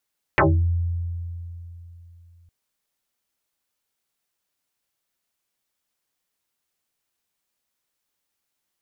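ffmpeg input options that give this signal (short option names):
-f lavfi -i "aevalsrc='0.237*pow(10,-3*t/3.26)*sin(2*PI*85.8*t+11*pow(10,-3*t/0.31)*sin(2*PI*2.78*85.8*t))':d=2.11:s=44100"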